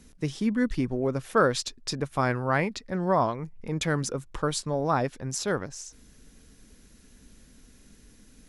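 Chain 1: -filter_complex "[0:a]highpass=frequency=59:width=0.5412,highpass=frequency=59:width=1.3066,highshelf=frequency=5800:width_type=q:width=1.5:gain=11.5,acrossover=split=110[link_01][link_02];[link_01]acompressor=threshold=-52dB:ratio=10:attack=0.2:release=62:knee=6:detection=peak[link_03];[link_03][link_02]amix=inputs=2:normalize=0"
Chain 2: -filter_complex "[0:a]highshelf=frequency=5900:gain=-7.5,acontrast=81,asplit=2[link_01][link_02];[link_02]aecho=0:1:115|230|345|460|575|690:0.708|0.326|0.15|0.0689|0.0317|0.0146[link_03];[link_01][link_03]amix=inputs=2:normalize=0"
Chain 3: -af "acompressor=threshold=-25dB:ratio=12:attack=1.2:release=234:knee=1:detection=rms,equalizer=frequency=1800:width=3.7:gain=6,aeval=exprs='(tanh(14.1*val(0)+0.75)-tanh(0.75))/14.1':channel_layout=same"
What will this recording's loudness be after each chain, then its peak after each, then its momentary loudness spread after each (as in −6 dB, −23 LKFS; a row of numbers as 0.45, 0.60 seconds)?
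−26.5, −19.5, −37.5 LKFS; −4.5, −3.5, −20.0 dBFS; 8, 8, 4 LU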